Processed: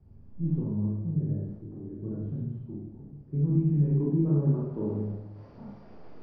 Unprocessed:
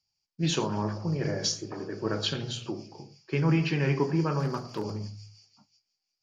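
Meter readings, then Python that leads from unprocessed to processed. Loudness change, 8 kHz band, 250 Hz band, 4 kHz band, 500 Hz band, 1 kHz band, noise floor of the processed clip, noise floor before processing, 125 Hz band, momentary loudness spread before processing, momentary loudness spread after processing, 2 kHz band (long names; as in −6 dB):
+0.5 dB, can't be measured, +1.5 dB, below −40 dB, −5.0 dB, below −15 dB, −50 dBFS, −83 dBFS, +3.0 dB, 13 LU, 20 LU, below −25 dB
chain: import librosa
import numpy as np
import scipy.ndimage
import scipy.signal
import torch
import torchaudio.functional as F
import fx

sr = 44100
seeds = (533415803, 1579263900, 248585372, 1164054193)

y = fx.delta_mod(x, sr, bps=32000, step_db=-38.5)
y = fx.rev_schroeder(y, sr, rt60_s=0.64, comb_ms=27, drr_db=-4.0)
y = fx.filter_sweep_lowpass(y, sr, from_hz=160.0, to_hz=530.0, start_s=3.64, end_s=5.4, q=0.74)
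y = y * 10.0 ** (1.5 / 20.0)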